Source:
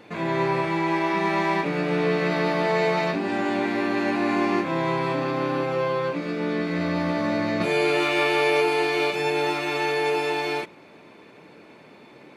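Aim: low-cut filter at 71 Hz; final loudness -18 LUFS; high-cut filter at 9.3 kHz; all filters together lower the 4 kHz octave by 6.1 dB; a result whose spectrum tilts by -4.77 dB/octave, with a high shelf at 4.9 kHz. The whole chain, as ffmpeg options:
-af "highpass=71,lowpass=9300,equalizer=f=4000:t=o:g=-5,highshelf=f=4900:g=-6.5,volume=2.11"

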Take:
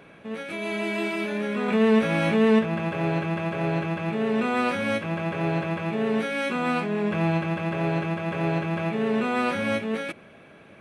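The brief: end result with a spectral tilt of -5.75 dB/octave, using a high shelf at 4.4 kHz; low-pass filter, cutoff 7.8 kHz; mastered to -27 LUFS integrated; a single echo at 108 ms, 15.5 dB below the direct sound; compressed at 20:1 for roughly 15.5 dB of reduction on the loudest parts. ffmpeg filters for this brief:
-af "lowpass=7800,highshelf=f=4400:g=-8.5,acompressor=threshold=0.0282:ratio=20,aecho=1:1:108:0.168,volume=2.51"

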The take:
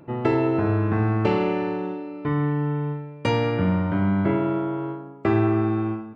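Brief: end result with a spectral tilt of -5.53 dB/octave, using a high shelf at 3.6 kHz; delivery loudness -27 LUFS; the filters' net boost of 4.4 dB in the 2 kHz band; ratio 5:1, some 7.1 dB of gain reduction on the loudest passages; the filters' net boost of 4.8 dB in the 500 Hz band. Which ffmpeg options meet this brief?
-af "equalizer=f=500:t=o:g=6,equalizer=f=2000:t=o:g=4,highshelf=f=3600:g=4.5,acompressor=threshold=0.0891:ratio=5,volume=0.891"

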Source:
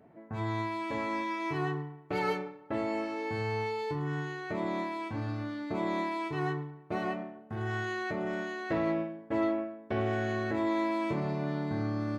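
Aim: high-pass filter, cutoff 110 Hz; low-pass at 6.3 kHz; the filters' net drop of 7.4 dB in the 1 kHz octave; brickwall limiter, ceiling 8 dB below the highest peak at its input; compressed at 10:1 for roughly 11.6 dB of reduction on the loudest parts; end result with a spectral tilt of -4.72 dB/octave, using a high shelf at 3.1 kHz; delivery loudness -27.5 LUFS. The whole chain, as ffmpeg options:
-af "highpass=110,lowpass=6300,equalizer=f=1000:t=o:g=-8.5,highshelf=f=3100:g=-6.5,acompressor=threshold=0.01:ratio=10,volume=8.41,alimiter=limit=0.112:level=0:latency=1"

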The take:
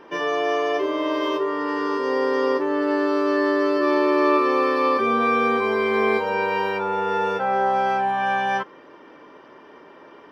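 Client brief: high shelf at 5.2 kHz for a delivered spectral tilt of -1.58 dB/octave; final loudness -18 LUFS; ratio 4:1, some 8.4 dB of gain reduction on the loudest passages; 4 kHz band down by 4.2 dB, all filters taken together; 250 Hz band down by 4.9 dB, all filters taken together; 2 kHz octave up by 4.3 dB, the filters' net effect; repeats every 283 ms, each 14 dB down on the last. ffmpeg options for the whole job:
-af "equalizer=f=250:t=o:g=-7,equalizer=f=2000:t=o:g=8,equalizer=f=4000:t=o:g=-7.5,highshelf=f=5200:g=-7,acompressor=threshold=0.0501:ratio=4,aecho=1:1:283|566:0.2|0.0399,volume=2.99"

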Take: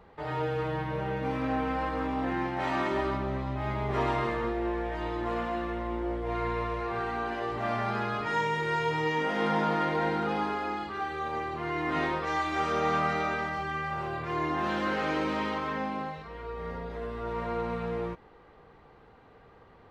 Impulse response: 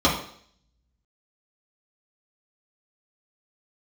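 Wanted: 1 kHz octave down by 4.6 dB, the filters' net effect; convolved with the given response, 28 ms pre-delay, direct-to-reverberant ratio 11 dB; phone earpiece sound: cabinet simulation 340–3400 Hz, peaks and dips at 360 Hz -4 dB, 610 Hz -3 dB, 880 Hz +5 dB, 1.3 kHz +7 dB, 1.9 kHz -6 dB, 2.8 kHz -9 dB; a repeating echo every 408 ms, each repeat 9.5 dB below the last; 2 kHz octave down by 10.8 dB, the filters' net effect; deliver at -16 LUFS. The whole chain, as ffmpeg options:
-filter_complex "[0:a]equalizer=f=1000:t=o:g=-8,equalizer=f=2000:t=o:g=-9,aecho=1:1:408|816|1224|1632:0.335|0.111|0.0365|0.012,asplit=2[s0][s1];[1:a]atrim=start_sample=2205,adelay=28[s2];[s1][s2]afir=irnorm=-1:irlink=0,volume=0.0335[s3];[s0][s3]amix=inputs=2:normalize=0,highpass=340,equalizer=f=360:t=q:w=4:g=-4,equalizer=f=610:t=q:w=4:g=-3,equalizer=f=880:t=q:w=4:g=5,equalizer=f=1300:t=q:w=4:g=7,equalizer=f=1900:t=q:w=4:g=-6,equalizer=f=2800:t=q:w=4:g=-9,lowpass=f=3400:w=0.5412,lowpass=f=3400:w=1.3066,volume=8.91"

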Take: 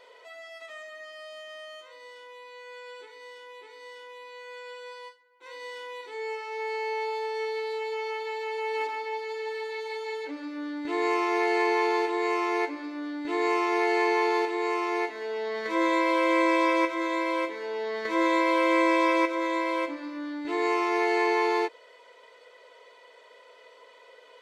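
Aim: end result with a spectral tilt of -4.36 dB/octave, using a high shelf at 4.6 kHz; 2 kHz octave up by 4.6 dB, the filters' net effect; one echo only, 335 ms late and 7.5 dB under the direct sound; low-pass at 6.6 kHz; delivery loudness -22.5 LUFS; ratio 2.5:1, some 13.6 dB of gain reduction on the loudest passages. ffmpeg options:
-af "lowpass=6600,equalizer=f=2000:t=o:g=3.5,highshelf=f=4600:g=9,acompressor=threshold=0.01:ratio=2.5,aecho=1:1:335:0.422,volume=5.62"

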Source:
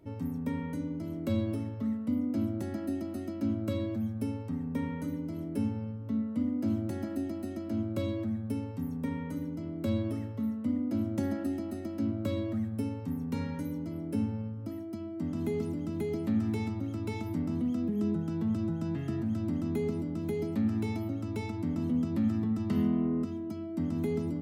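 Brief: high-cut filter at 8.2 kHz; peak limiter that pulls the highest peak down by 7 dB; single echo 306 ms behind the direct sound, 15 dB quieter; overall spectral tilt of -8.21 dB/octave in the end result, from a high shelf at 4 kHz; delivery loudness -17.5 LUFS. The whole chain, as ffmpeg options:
-af "lowpass=8200,highshelf=f=4000:g=-6,alimiter=level_in=1.26:limit=0.0631:level=0:latency=1,volume=0.794,aecho=1:1:306:0.178,volume=7.5"

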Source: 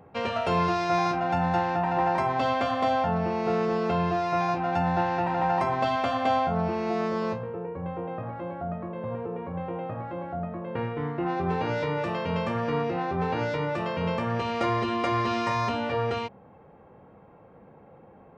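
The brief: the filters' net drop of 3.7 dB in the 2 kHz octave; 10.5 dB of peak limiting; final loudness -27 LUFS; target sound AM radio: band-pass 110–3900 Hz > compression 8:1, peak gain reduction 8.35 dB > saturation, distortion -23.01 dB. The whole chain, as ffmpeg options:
-af "equalizer=f=2000:t=o:g=-4.5,alimiter=limit=0.0668:level=0:latency=1,highpass=110,lowpass=3900,acompressor=threshold=0.0178:ratio=8,asoftclip=threshold=0.0316,volume=4.47"

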